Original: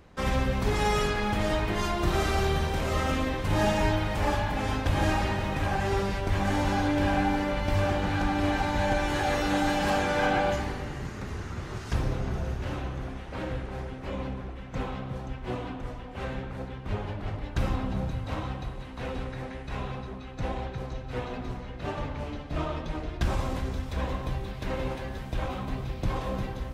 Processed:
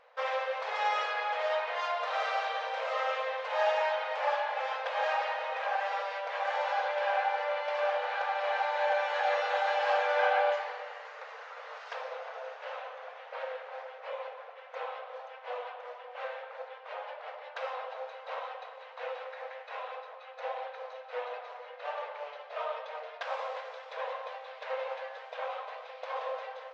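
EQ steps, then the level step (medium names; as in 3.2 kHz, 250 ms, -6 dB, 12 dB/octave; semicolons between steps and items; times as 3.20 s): Gaussian low-pass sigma 2.1 samples; brick-wall FIR high-pass 450 Hz; 0.0 dB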